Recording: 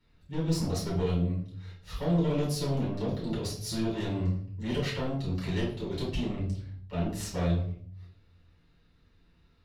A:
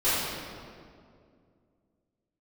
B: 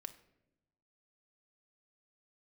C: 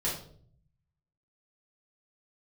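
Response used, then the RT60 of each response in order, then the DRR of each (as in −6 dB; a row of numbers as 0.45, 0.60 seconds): C; 2.3 s, non-exponential decay, 0.55 s; −14.5, 8.0, −7.0 decibels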